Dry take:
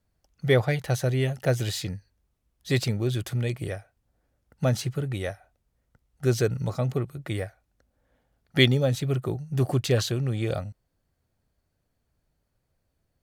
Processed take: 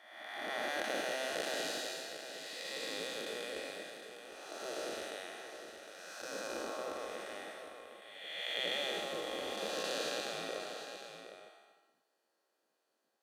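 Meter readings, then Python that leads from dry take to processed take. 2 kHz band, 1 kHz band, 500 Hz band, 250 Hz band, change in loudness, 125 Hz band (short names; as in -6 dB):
-6.0 dB, -2.5 dB, -11.5 dB, -18.5 dB, -13.0 dB, -39.5 dB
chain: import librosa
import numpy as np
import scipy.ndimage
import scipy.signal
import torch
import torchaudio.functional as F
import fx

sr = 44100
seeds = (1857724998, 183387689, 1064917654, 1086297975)

p1 = fx.spec_blur(x, sr, span_ms=606.0)
p2 = fx.low_shelf(p1, sr, hz=380.0, db=11.0)
p3 = fx.notch(p2, sr, hz=2200.0, q=7.7)
p4 = fx.comb_fb(p3, sr, f0_hz=270.0, decay_s=1.1, harmonics='all', damping=0.0, mix_pct=80)
p5 = fx.spec_gate(p4, sr, threshold_db=-20, keep='weak')
p6 = fx.weighting(p5, sr, curve='A')
p7 = p6 + fx.echo_single(p6, sr, ms=758, db=-9.5, dry=0)
y = F.gain(torch.from_numpy(p7), 14.5).numpy()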